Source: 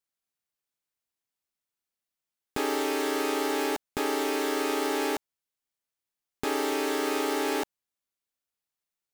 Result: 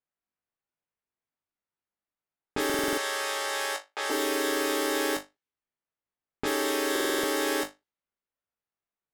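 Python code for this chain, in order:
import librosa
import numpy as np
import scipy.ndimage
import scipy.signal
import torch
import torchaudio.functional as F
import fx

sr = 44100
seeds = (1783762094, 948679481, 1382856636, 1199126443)

y = fx.highpass(x, sr, hz=560.0, slope=24, at=(2.75, 4.1))
y = fx.room_flutter(y, sr, wall_m=3.4, rt60_s=0.21)
y = fx.env_lowpass(y, sr, base_hz=1800.0, full_db=-25.5)
y = fx.high_shelf(y, sr, hz=6100.0, db=5.0)
y = fx.buffer_glitch(y, sr, at_s=(2.65, 6.91), block=2048, repeats=6)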